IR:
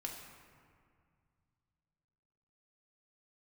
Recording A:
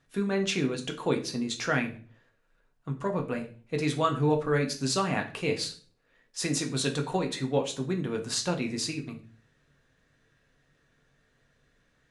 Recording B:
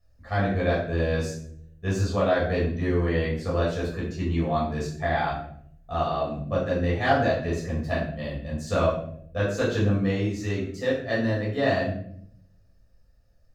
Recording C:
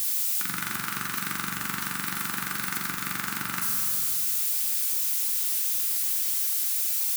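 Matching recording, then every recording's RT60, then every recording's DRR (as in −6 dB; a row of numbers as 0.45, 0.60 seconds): C; 0.40, 0.65, 2.1 seconds; 2.5, −7.0, 0.0 decibels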